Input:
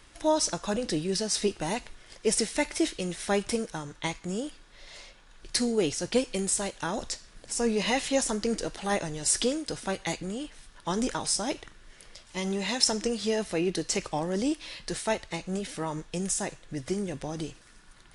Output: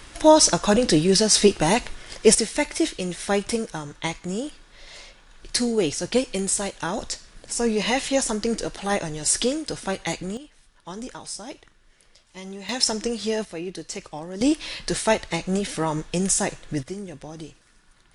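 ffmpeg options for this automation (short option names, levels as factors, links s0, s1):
-af "asetnsamples=n=441:p=0,asendcmd='2.35 volume volume 4dB;10.37 volume volume -6.5dB;12.69 volume volume 2.5dB;13.45 volume volume -4.5dB;14.41 volume volume 8dB;16.83 volume volume -3dB',volume=3.55"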